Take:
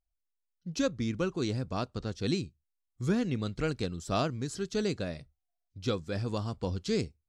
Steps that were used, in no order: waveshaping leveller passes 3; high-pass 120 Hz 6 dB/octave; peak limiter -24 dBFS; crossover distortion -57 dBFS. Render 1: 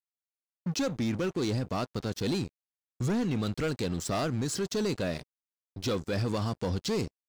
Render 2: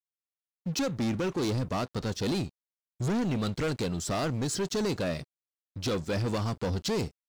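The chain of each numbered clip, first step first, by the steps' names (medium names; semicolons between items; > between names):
high-pass > crossover distortion > waveshaping leveller > peak limiter; high-pass > peak limiter > waveshaping leveller > crossover distortion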